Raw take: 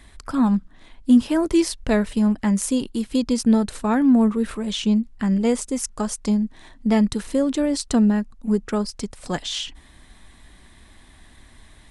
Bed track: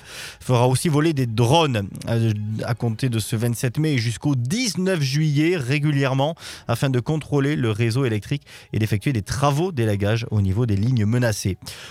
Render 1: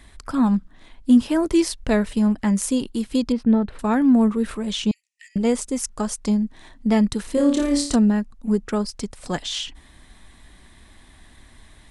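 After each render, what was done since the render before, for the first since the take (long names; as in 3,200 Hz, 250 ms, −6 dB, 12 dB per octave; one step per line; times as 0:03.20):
0:03.32–0:03.79: high-frequency loss of the air 420 metres
0:04.91–0:05.36: Chebyshev high-pass with heavy ripple 1,800 Hz, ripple 9 dB
0:07.34–0:07.96: flutter between parallel walls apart 4.8 metres, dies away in 0.47 s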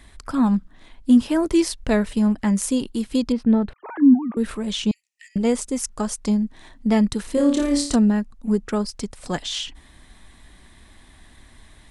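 0:03.73–0:04.37: three sine waves on the formant tracks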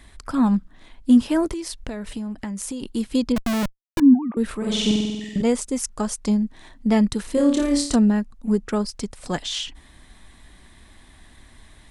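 0:01.53–0:02.83: downward compressor 16 to 1, threshold −26 dBFS
0:03.36–0:04.00: comparator with hysteresis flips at −28 dBFS
0:04.57–0:05.42: flutter between parallel walls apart 8.1 metres, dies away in 1.3 s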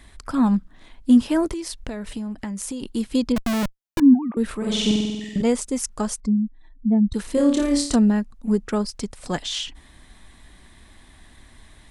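0:06.20–0:07.14: expanding power law on the bin magnitudes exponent 2.1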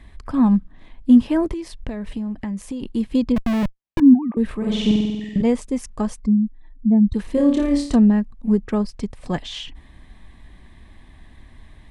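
bass and treble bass +5 dB, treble −12 dB
notch filter 1,400 Hz, Q 6.6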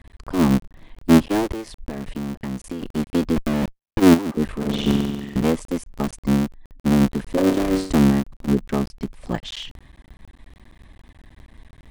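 sub-harmonics by changed cycles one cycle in 3, muted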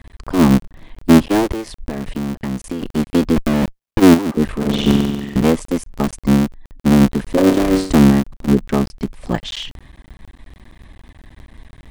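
level +5.5 dB
brickwall limiter −1 dBFS, peak gain reduction 2.5 dB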